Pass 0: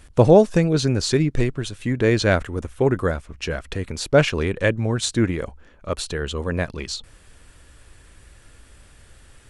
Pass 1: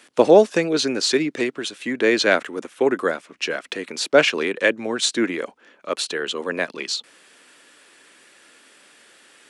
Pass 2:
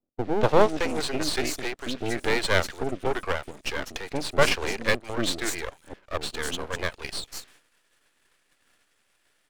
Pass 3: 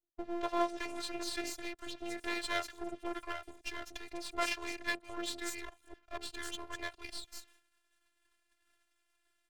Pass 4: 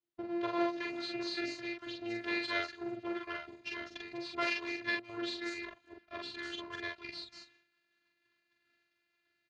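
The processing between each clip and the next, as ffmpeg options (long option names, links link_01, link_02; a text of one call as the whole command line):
ffmpeg -i in.wav -filter_complex "[0:a]highpass=frequency=250:width=0.5412,highpass=frequency=250:width=1.3066,highshelf=frequency=6500:gain=-9.5,acrossover=split=440|1700[link_01][link_02][link_03];[link_03]acontrast=70[link_04];[link_01][link_02][link_04]amix=inputs=3:normalize=0,volume=1dB" out.wav
ffmpeg -i in.wav -filter_complex "[0:a]acrossover=split=370|5500[link_01][link_02][link_03];[link_02]adelay=240[link_04];[link_03]adelay=440[link_05];[link_01][link_04][link_05]amix=inputs=3:normalize=0,agate=range=-14dB:threshold=-50dB:ratio=16:detection=peak,aeval=exprs='max(val(0),0)':channel_layout=same" out.wav
ffmpeg -i in.wav -filter_complex "[0:a]acrossover=split=330[link_01][link_02];[link_01]acompressor=threshold=-35dB:ratio=6[link_03];[link_03][link_02]amix=inputs=2:normalize=0,afftfilt=real='hypot(re,im)*cos(PI*b)':imag='0':win_size=512:overlap=0.75,volume=-7.5dB" out.wav
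ffmpeg -i in.wav -filter_complex "[0:a]highpass=110,equalizer=frequency=120:width_type=q:width=4:gain=10,equalizer=frequency=200:width_type=q:width=4:gain=5,equalizer=frequency=760:width_type=q:width=4:gain=-5,lowpass=frequency=4800:width=0.5412,lowpass=frequency=4800:width=1.3066,asplit=2[link_01][link_02];[link_02]adelay=44,volume=-2.5dB[link_03];[link_01][link_03]amix=inputs=2:normalize=0" out.wav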